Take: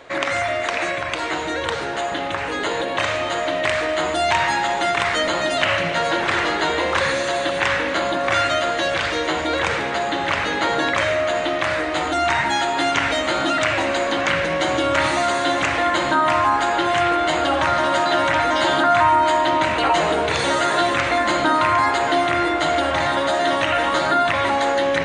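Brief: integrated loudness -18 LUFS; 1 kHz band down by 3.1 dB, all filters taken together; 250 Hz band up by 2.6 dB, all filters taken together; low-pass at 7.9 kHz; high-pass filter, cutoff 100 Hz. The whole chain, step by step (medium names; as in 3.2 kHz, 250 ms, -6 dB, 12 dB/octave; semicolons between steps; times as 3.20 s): high-pass 100 Hz; low-pass 7.9 kHz; peaking EQ 250 Hz +4 dB; peaking EQ 1 kHz -4.5 dB; trim +2.5 dB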